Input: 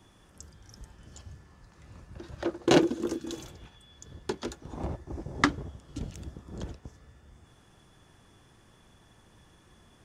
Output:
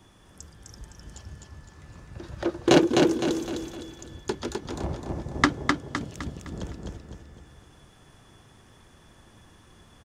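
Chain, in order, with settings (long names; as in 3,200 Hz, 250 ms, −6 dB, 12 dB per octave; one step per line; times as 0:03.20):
0:05.46–0:06.19: high-pass filter 120 Hz
repeating echo 256 ms, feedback 42%, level −3.5 dB
level +3 dB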